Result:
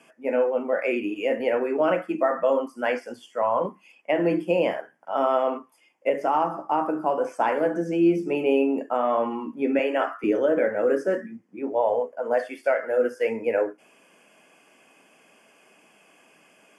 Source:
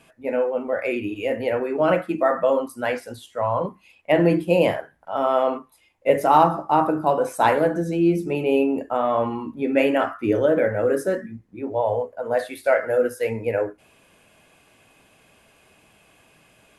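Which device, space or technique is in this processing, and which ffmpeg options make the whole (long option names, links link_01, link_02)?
PA system with an anti-feedback notch: -filter_complex "[0:a]lowpass=9700,acrossover=split=5800[link_01][link_02];[link_02]acompressor=threshold=-58dB:ratio=4:attack=1:release=60[link_03];[link_01][link_03]amix=inputs=2:normalize=0,highpass=frequency=200:width=0.5412,highpass=frequency=200:width=1.3066,asuperstop=centerf=3900:order=4:qfactor=3.3,alimiter=limit=-11.5dB:level=0:latency=1:release=473,asettb=1/sr,asplit=3[link_04][link_05][link_06];[link_04]atrim=end=9.794[link_07];[link_05]atrim=start=9.79:end=10.24,asetpts=PTS-STARTPTS,afade=type=in:duration=0.004:curve=qsin,afade=type=out:start_time=0.446:duration=0.004:curve=qsin,highpass=frequency=310:width=0.5412,highpass=frequency=310:width=1.3066[link_08];[link_06]atrim=start=10.236[link_09];[link_07][link_08]acrossfade=duration=0.004:curve1=hsin:curve2=qsin[link_10];[link_10][link_09]acrossfade=duration=0.004:curve1=qsin:curve2=hsin"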